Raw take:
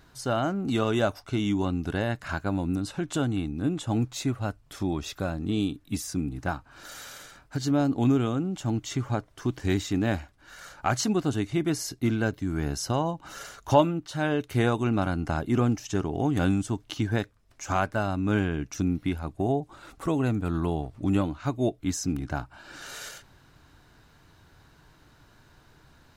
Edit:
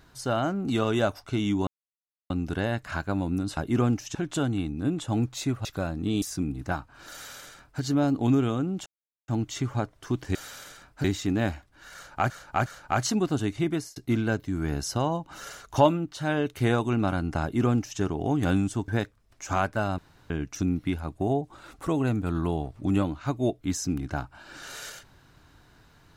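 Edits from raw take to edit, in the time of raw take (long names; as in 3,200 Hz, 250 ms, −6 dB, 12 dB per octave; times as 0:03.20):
0:01.67: splice in silence 0.63 s
0:04.44–0:05.08: remove
0:05.65–0:05.99: remove
0:06.89–0:07.58: duplicate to 0:09.70
0:08.63: splice in silence 0.42 s
0:10.60–0:10.96: repeat, 3 plays
0:11.64–0:11.90: fade out
0:15.36–0:15.94: duplicate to 0:02.94
0:16.82–0:17.07: remove
0:18.17–0:18.49: fill with room tone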